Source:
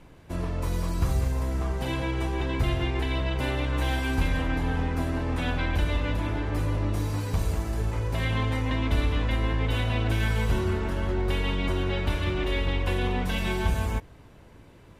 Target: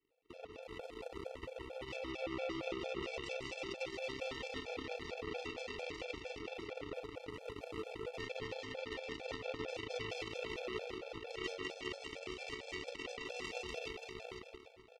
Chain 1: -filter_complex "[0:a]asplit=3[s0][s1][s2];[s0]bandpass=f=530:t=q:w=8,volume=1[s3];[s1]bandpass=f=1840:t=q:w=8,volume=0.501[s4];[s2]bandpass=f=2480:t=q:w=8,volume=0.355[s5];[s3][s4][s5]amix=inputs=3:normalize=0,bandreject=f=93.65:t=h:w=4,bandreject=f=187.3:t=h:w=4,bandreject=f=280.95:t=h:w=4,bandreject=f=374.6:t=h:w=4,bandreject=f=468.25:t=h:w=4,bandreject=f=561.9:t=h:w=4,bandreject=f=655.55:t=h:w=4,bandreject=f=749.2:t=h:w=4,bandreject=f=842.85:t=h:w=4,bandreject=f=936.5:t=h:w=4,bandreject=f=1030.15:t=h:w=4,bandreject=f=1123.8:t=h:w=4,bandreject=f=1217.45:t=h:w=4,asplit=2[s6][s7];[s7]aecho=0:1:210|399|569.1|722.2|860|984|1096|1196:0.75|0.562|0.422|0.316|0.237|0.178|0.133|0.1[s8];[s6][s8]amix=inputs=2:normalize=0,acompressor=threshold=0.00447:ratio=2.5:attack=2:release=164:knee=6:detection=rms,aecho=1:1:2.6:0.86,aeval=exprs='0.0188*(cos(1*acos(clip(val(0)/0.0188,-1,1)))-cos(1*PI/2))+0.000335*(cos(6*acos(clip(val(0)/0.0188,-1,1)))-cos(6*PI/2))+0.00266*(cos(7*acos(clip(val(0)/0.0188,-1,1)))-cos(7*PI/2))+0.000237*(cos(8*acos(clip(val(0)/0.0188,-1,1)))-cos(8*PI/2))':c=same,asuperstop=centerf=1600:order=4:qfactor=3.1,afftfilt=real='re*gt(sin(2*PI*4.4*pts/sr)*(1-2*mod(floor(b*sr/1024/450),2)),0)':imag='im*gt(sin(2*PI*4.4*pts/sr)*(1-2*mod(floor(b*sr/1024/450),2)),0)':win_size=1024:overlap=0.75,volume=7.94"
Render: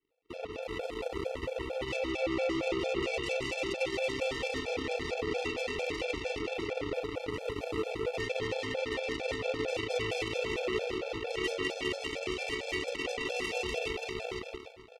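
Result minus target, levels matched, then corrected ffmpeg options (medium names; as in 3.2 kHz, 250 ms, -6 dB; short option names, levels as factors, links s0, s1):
compression: peak gain reduction -4.5 dB
-filter_complex "[0:a]asplit=3[s0][s1][s2];[s0]bandpass=f=530:t=q:w=8,volume=1[s3];[s1]bandpass=f=1840:t=q:w=8,volume=0.501[s4];[s2]bandpass=f=2480:t=q:w=8,volume=0.355[s5];[s3][s4][s5]amix=inputs=3:normalize=0,bandreject=f=93.65:t=h:w=4,bandreject=f=187.3:t=h:w=4,bandreject=f=280.95:t=h:w=4,bandreject=f=374.6:t=h:w=4,bandreject=f=468.25:t=h:w=4,bandreject=f=561.9:t=h:w=4,bandreject=f=655.55:t=h:w=4,bandreject=f=749.2:t=h:w=4,bandreject=f=842.85:t=h:w=4,bandreject=f=936.5:t=h:w=4,bandreject=f=1030.15:t=h:w=4,bandreject=f=1123.8:t=h:w=4,bandreject=f=1217.45:t=h:w=4,asplit=2[s6][s7];[s7]aecho=0:1:210|399|569.1|722.2|860|984|1096|1196:0.75|0.562|0.422|0.316|0.237|0.178|0.133|0.1[s8];[s6][s8]amix=inputs=2:normalize=0,acompressor=threshold=0.00188:ratio=2.5:attack=2:release=164:knee=6:detection=rms,aecho=1:1:2.6:0.86,aeval=exprs='0.0188*(cos(1*acos(clip(val(0)/0.0188,-1,1)))-cos(1*PI/2))+0.000335*(cos(6*acos(clip(val(0)/0.0188,-1,1)))-cos(6*PI/2))+0.00266*(cos(7*acos(clip(val(0)/0.0188,-1,1)))-cos(7*PI/2))+0.000237*(cos(8*acos(clip(val(0)/0.0188,-1,1)))-cos(8*PI/2))':c=same,asuperstop=centerf=1600:order=4:qfactor=3.1,afftfilt=real='re*gt(sin(2*PI*4.4*pts/sr)*(1-2*mod(floor(b*sr/1024/450),2)),0)':imag='im*gt(sin(2*PI*4.4*pts/sr)*(1-2*mod(floor(b*sr/1024/450),2)),0)':win_size=1024:overlap=0.75,volume=7.94"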